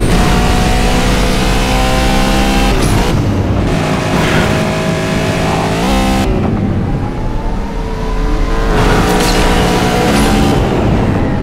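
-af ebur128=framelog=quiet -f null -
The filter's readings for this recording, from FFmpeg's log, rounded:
Integrated loudness:
  I:         -12.6 LUFS
  Threshold: -22.6 LUFS
Loudness range:
  LRA:         3.1 LU
  Threshold: -33.0 LUFS
  LRA low:   -14.9 LUFS
  LRA high:  -11.8 LUFS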